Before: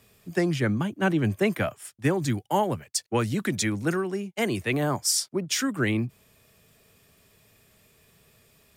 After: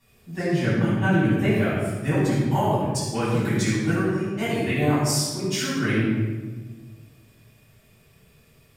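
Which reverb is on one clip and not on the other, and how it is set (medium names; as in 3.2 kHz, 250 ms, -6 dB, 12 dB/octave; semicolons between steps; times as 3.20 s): simulated room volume 1000 m³, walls mixed, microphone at 9.6 m; trim -13 dB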